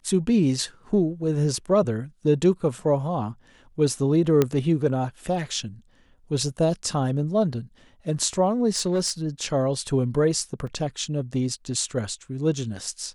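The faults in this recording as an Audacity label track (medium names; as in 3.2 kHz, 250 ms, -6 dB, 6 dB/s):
4.420000	4.420000	pop -7 dBFS
8.760000	9.110000	clipped -18 dBFS
10.670000	10.670000	dropout 3.9 ms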